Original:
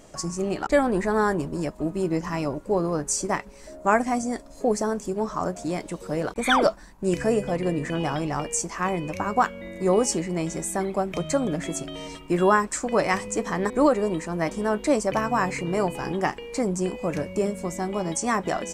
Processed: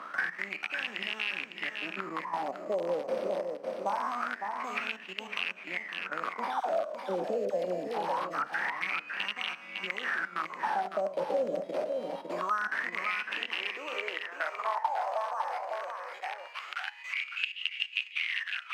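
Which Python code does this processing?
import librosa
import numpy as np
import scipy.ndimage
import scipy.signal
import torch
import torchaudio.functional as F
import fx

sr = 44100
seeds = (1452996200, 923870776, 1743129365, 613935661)

y = fx.spec_trails(x, sr, decay_s=0.57)
y = fx.high_shelf(y, sr, hz=4900.0, db=10.0)
y = fx.level_steps(y, sr, step_db=13)
y = fx.sample_hold(y, sr, seeds[0], rate_hz=7100.0, jitter_pct=0)
y = (np.mod(10.0 ** (17.0 / 20.0) * y + 1.0, 2.0) - 1.0) / 10.0 ** (17.0 / 20.0)
y = fx.filter_sweep_highpass(y, sr, from_hz=200.0, to_hz=2900.0, start_s=12.99, end_s=16.62, q=3.3)
y = fx.dispersion(y, sr, late='lows', ms=56.0, hz=890.0, at=(6.6, 8.66))
y = fx.wah_lfo(y, sr, hz=0.24, low_hz=530.0, high_hz=2800.0, q=10.0)
y = y + 10.0 ** (-8.5 / 20.0) * np.pad(y, (int(555 * sr / 1000.0), 0))[:len(y)]
y = fx.band_squash(y, sr, depth_pct=70)
y = y * librosa.db_to_amplitude(6.5)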